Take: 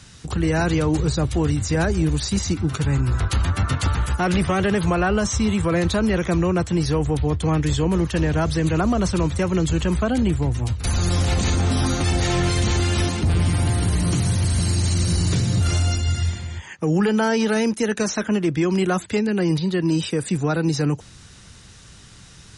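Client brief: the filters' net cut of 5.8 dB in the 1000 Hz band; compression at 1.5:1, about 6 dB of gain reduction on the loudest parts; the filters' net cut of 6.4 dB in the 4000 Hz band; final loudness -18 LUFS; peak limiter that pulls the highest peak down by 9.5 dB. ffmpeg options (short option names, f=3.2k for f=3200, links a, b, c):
-af "equalizer=f=1k:t=o:g=-8,equalizer=f=4k:t=o:g=-8,acompressor=threshold=-34dB:ratio=1.5,volume=16dB,alimiter=limit=-10.5dB:level=0:latency=1"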